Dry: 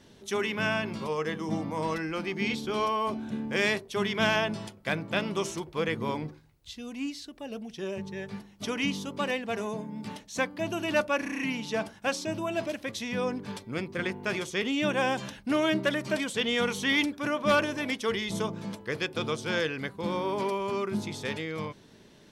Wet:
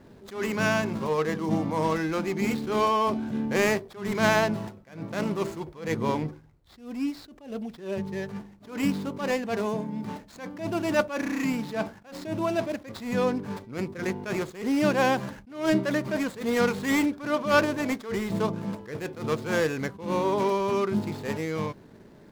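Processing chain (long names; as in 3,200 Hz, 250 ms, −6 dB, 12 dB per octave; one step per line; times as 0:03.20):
running median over 15 samples
level that may rise only so fast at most 130 dB per second
level +5.5 dB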